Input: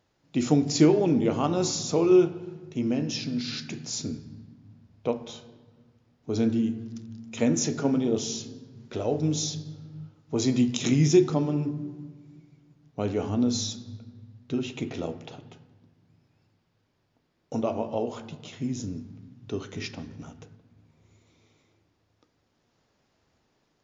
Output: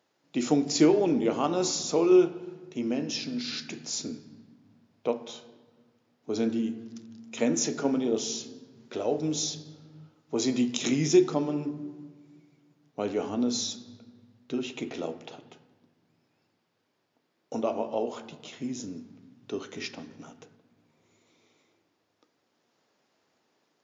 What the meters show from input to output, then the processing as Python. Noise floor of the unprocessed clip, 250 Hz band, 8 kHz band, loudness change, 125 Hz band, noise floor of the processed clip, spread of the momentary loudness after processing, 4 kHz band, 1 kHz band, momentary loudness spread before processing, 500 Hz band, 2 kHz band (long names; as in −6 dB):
−72 dBFS, −2.5 dB, can't be measured, −1.5 dB, −9.5 dB, −75 dBFS, 20 LU, 0.0 dB, 0.0 dB, 22 LU, −0.5 dB, 0.0 dB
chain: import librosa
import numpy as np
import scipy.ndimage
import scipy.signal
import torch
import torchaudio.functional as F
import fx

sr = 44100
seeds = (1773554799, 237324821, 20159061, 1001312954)

y = scipy.signal.sosfilt(scipy.signal.butter(2, 250.0, 'highpass', fs=sr, output='sos'), x)